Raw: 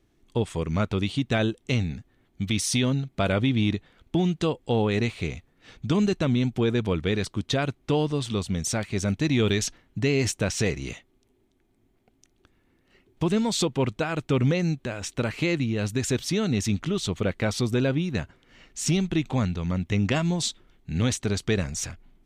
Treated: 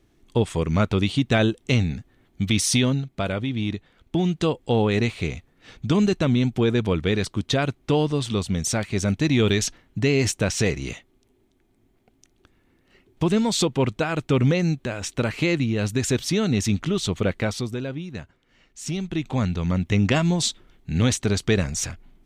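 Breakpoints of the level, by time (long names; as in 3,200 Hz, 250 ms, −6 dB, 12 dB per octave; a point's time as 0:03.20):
0:02.73 +4.5 dB
0:03.44 −4 dB
0:04.49 +3 dB
0:17.36 +3 dB
0:17.81 −6.5 dB
0:18.81 −6.5 dB
0:19.59 +4 dB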